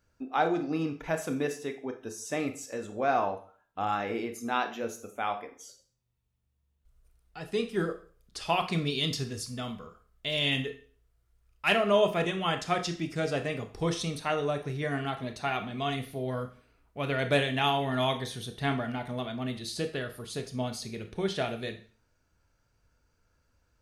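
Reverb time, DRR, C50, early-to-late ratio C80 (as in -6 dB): 0.45 s, 7.0 dB, 12.0 dB, 16.0 dB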